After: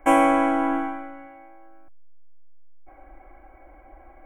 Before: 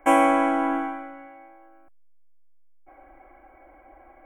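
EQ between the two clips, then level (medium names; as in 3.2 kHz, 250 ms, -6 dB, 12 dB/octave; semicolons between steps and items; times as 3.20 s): bass shelf 120 Hz +10.5 dB; 0.0 dB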